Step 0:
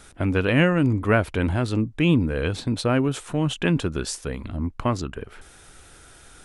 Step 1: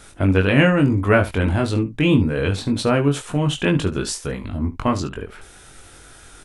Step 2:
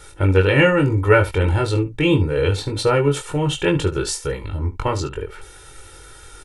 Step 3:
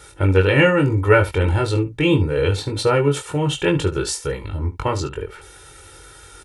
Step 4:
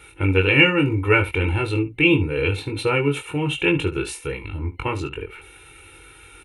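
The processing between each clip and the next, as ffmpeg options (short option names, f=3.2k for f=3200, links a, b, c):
-af "aecho=1:1:21|73:0.631|0.178,volume=2.5dB"
-af "aecho=1:1:2.2:0.9,volume=-1dB"
-af "highpass=46"
-af "superequalizer=6b=1.58:8b=0.447:12b=3.55:14b=0.316:15b=0.398,volume=-4dB"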